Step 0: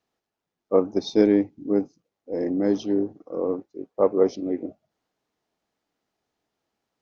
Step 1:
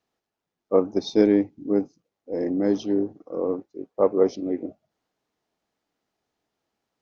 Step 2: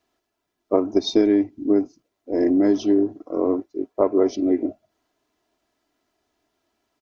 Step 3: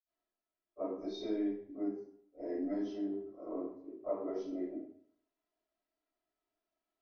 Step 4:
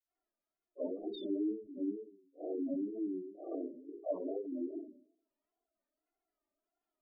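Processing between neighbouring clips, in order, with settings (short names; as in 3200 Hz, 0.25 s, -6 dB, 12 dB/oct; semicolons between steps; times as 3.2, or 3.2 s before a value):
nothing audible
comb 3 ms, depth 59%; compressor 6:1, threshold -19 dBFS, peak gain reduction 9 dB; gain +5.5 dB
reverb RT60 0.65 s, pre-delay 48 ms; gain -7 dB
spectral gate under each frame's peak -15 dB strong; wow and flutter 130 cents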